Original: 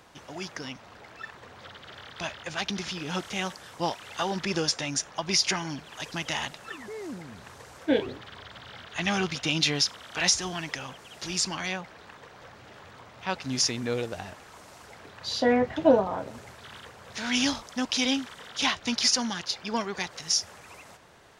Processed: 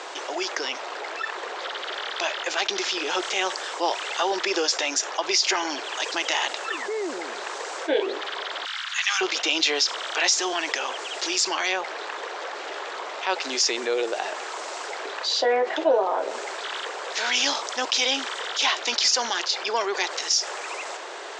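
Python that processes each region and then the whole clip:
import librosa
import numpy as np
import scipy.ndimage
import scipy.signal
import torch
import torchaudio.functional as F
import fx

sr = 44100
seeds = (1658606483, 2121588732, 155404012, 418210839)

y = fx.chain(x, sr, fx.cheby2_highpass(hz=440.0, order=4, stop_db=50),
    fx.high_shelf(hz=7700.0, db=8.5), at=(8.65, 9.21))
y = scipy.signal.sosfilt(scipy.signal.cheby1(4, 1.0, [360.0, 7800.0], 'bandpass', fs=sr, output='sos'), y)
y = fx.env_flatten(y, sr, amount_pct=50)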